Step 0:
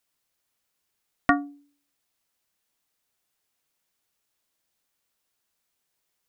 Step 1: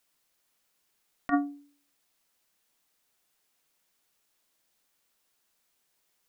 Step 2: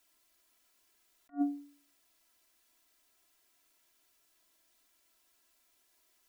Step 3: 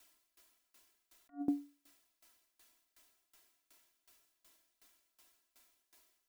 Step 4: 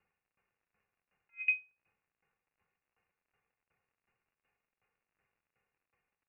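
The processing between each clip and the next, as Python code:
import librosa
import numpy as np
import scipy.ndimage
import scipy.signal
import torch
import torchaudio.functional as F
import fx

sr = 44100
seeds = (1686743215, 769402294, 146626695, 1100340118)

y1 = fx.over_compress(x, sr, threshold_db=-23.0, ratio=-0.5)
y1 = fx.peak_eq(y1, sr, hz=91.0, db=-12.0, octaves=0.59)
y2 = y1 + 0.89 * np.pad(y1, (int(3.0 * sr / 1000.0), 0))[:len(y1)]
y2 = fx.attack_slew(y2, sr, db_per_s=350.0)
y3 = fx.tremolo_decay(y2, sr, direction='decaying', hz=2.7, depth_db=23)
y3 = y3 * librosa.db_to_amplitude(8.0)
y4 = fx.dmg_crackle(y3, sr, seeds[0], per_s=94.0, level_db=-57.0)
y4 = fx.freq_invert(y4, sr, carrier_hz=2800)
y4 = fx.upward_expand(y4, sr, threshold_db=-51.0, expansion=1.5)
y4 = y4 * librosa.db_to_amplitude(4.0)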